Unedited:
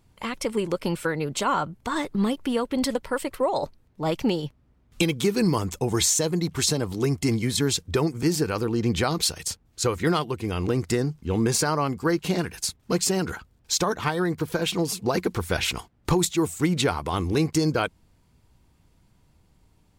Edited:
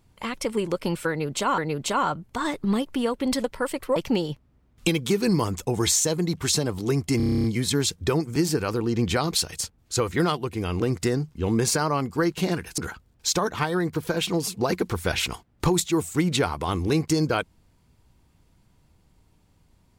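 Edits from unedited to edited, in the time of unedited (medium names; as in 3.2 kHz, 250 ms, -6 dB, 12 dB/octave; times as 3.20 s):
1.09–1.58 s: loop, 2 plays
3.47–4.10 s: delete
7.31 s: stutter 0.03 s, 10 plays
12.65–13.23 s: delete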